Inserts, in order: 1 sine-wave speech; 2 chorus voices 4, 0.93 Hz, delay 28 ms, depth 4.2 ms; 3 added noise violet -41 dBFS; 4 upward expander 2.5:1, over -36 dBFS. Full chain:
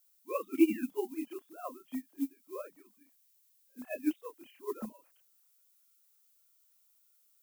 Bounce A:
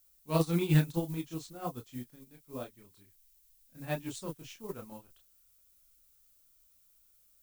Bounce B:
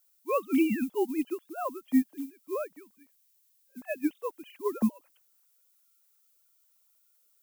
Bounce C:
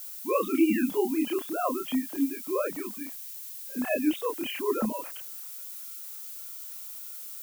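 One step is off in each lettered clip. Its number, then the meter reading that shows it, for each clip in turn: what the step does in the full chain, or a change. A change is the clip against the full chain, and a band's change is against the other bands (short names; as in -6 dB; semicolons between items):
1, 250 Hz band -5.5 dB; 2, 1 kHz band +3.0 dB; 4, 8 kHz band +6.0 dB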